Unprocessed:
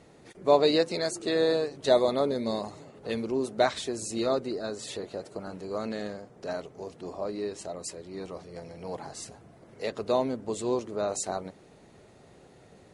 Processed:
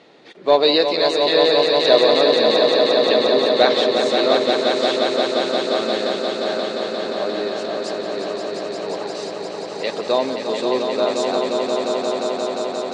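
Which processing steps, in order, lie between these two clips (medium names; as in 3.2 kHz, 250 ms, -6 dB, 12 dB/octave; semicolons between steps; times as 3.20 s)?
high-pass 280 Hz 12 dB/octave; in parallel at -9.5 dB: overload inside the chain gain 18.5 dB; on the sum: resonant low-pass 3.8 kHz, resonance Q 2.1; echo with a slow build-up 176 ms, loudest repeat 5, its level -6 dB; trim +4.5 dB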